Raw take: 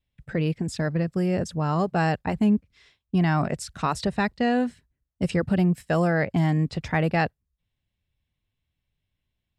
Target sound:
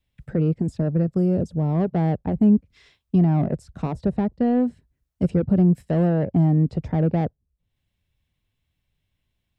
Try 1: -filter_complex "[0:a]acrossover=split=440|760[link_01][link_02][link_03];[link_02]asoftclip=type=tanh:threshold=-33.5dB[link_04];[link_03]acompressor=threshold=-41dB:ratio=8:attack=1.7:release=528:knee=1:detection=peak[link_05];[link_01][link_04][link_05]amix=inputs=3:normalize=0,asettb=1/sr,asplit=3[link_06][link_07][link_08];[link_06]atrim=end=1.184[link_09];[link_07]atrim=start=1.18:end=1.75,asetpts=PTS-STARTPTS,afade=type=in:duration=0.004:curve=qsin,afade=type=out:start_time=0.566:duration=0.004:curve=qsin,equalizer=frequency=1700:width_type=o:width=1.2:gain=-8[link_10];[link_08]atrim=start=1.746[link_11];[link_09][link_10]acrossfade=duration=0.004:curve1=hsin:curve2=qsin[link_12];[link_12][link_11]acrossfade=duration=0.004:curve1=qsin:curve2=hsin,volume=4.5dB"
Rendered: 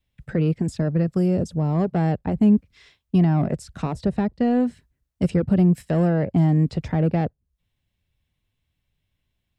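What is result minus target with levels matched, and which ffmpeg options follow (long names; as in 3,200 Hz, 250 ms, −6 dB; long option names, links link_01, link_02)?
downward compressor: peak gain reduction −10 dB
-filter_complex "[0:a]acrossover=split=440|760[link_01][link_02][link_03];[link_02]asoftclip=type=tanh:threshold=-33.5dB[link_04];[link_03]acompressor=threshold=-52.5dB:ratio=8:attack=1.7:release=528:knee=1:detection=peak[link_05];[link_01][link_04][link_05]amix=inputs=3:normalize=0,asettb=1/sr,asplit=3[link_06][link_07][link_08];[link_06]atrim=end=1.184[link_09];[link_07]atrim=start=1.18:end=1.75,asetpts=PTS-STARTPTS,afade=type=in:duration=0.004:curve=qsin,afade=type=out:start_time=0.566:duration=0.004:curve=qsin,equalizer=frequency=1700:width_type=o:width=1.2:gain=-8[link_10];[link_08]atrim=start=1.746[link_11];[link_09][link_10]acrossfade=duration=0.004:curve1=hsin:curve2=qsin[link_12];[link_12][link_11]acrossfade=duration=0.004:curve1=qsin:curve2=hsin,volume=4.5dB"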